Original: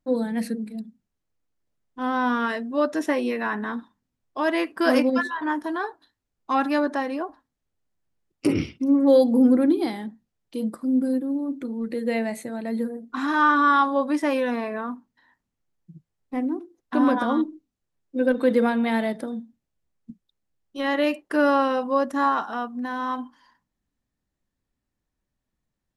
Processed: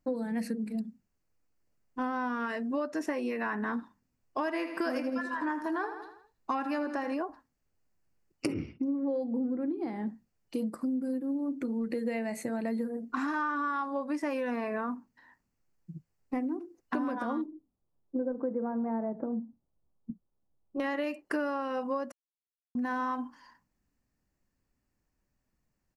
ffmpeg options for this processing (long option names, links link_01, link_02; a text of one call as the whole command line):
ffmpeg -i in.wav -filter_complex "[0:a]asplit=3[link_01][link_02][link_03];[link_01]afade=type=out:start_time=4.44:duration=0.02[link_04];[link_02]aecho=1:1:81|162|243|324|405:0.251|0.121|0.0579|0.0278|0.0133,afade=type=in:start_time=4.44:duration=0.02,afade=type=out:start_time=7.13:duration=0.02[link_05];[link_03]afade=type=in:start_time=7.13:duration=0.02[link_06];[link_04][link_05][link_06]amix=inputs=3:normalize=0,asettb=1/sr,asplit=3[link_07][link_08][link_09];[link_07]atrim=end=8.544[link_10];[link_08]atrim=start=8.54:end=10.07,asetpts=PTS-STARTPTS,afade=type=in:duration=0.004:curve=qsin,afade=type=out:start_time=1.526:duration=0.004:curve=qsin,lowpass=frequency=1200:poles=1[link_11];[link_09]atrim=start=10.066[link_12];[link_10][link_11]acrossfade=duration=0.004:curve1=hsin:curve2=qsin[link_13];[link_13][link_12]acrossfade=duration=0.004:curve1=qsin:curve2=hsin,asettb=1/sr,asplit=3[link_14][link_15][link_16];[link_14]atrim=end=17.464[link_17];[link_15]atrim=start=17.46:end=20.8,asetpts=PTS-STARTPTS,afade=type=in:duration=0.004:curve=qsin,afade=type=out:start_time=3.336:duration=0.004:curve=qsin,lowpass=frequency=1100:width=0.5412,lowpass=frequency=1100:width=1.3066[link_18];[link_16]atrim=start=20.796[link_19];[link_17][link_18]acrossfade=duration=0.004:curve1=hsin:curve2=qsin[link_20];[link_20][link_19]acrossfade=duration=0.004:curve1=qsin:curve2=hsin,asplit=3[link_21][link_22][link_23];[link_21]atrim=end=22.12,asetpts=PTS-STARTPTS,afade=type=out:start_time=22.116:duration=0.004:curve=hsin[link_24];[link_22]atrim=start=22.12:end=22.75,asetpts=PTS-STARTPTS,volume=0[link_25];[link_23]atrim=start=22.75,asetpts=PTS-STARTPTS,afade=type=in:duration=0.004:curve=hsin[link_26];[link_24][link_25][link_26]concat=n=3:v=0:a=1,acompressor=threshold=-31dB:ratio=12,superequalizer=13b=0.398:16b=0.708,volume=2dB" out.wav